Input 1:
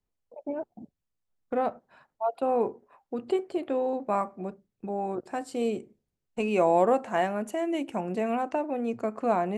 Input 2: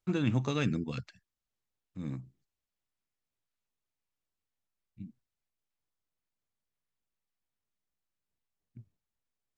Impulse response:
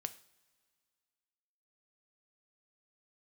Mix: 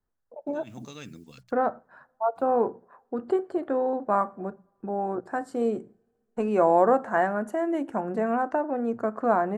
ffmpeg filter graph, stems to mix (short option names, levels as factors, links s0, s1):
-filter_complex "[0:a]highshelf=f=2000:t=q:w=3:g=-7.5,volume=0.944,asplit=3[s0][s1][s2];[s1]volume=0.376[s3];[1:a]acontrast=77,acrusher=bits=8:mix=0:aa=0.5,bass=f=250:g=-4,treble=f=4000:g=10,adelay=400,volume=0.133[s4];[s2]apad=whole_len=440104[s5];[s4][s5]sidechaincompress=threshold=0.0126:ratio=8:attack=5.6:release=148[s6];[2:a]atrim=start_sample=2205[s7];[s3][s7]afir=irnorm=-1:irlink=0[s8];[s0][s6][s8]amix=inputs=3:normalize=0,bandreject=f=60:t=h:w=6,bandreject=f=120:t=h:w=6,bandreject=f=180:t=h:w=6"